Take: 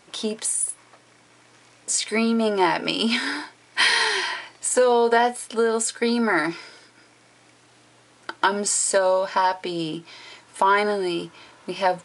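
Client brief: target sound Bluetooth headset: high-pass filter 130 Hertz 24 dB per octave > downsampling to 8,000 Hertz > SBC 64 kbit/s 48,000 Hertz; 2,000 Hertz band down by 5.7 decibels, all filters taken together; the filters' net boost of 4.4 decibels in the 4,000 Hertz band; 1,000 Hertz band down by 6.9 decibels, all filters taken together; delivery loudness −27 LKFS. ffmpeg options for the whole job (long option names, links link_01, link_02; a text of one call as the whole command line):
ffmpeg -i in.wav -af "highpass=frequency=130:width=0.5412,highpass=frequency=130:width=1.3066,equalizer=frequency=1000:width_type=o:gain=-7.5,equalizer=frequency=2000:width_type=o:gain=-6.5,equalizer=frequency=4000:width_type=o:gain=8,aresample=8000,aresample=44100,volume=-2dB" -ar 48000 -c:a sbc -b:a 64k out.sbc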